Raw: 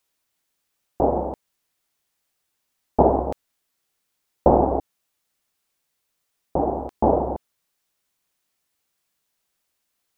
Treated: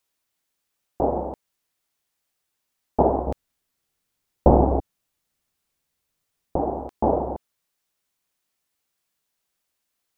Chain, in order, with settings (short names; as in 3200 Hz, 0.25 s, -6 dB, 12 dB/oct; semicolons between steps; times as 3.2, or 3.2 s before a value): 3.27–6.56 low shelf 220 Hz +10 dB; gain -2.5 dB